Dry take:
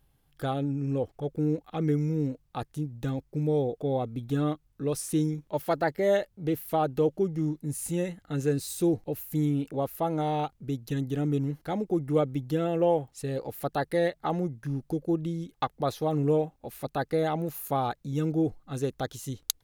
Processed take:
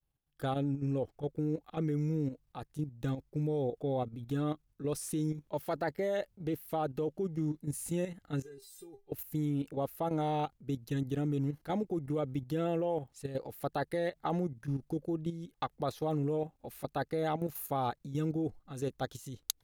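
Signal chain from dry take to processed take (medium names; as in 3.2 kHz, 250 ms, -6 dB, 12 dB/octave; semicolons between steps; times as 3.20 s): expander -58 dBFS; level held to a coarse grid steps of 10 dB; 8.42–9.12 s: feedback comb 400 Hz, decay 0.16 s, harmonics all, mix 100%; trim -1.5 dB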